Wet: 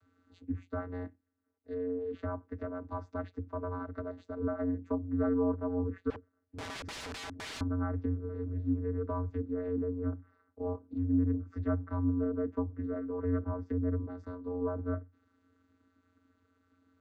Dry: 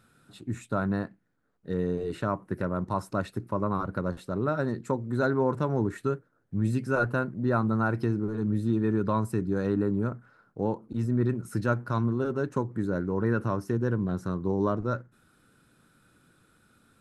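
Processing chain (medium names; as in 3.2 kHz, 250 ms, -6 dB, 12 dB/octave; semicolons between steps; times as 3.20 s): vocoder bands 16, square 89.7 Hz; 6.10–7.61 s: integer overflow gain 32 dB; low-pass that closes with the level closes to 1.4 kHz, closed at -25 dBFS; trim -4.5 dB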